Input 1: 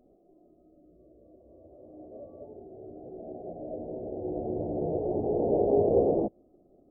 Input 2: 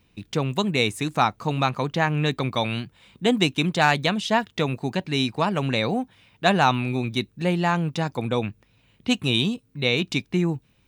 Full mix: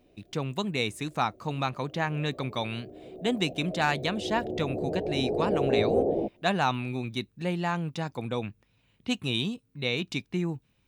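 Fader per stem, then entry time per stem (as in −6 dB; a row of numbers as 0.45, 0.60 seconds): −1.5, −7.0 decibels; 0.00, 0.00 seconds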